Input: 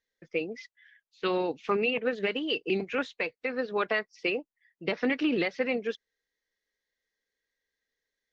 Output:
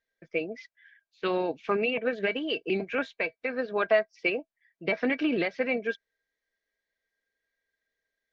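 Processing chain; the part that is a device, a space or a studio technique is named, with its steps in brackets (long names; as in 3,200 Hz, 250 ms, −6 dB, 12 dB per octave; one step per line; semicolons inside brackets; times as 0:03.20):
inside a helmet (high-shelf EQ 5,800 Hz −9 dB; hollow resonant body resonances 650/1,600/2,300 Hz, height 13 dB, ringing for 90 ms)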